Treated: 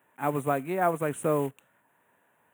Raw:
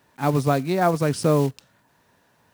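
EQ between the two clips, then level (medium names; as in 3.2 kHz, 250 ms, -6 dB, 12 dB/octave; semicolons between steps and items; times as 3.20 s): high-pass 390 Hz 6 dB/octave; Butterworth band-stop 4.9 kHz, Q 0.88; -3.5 dB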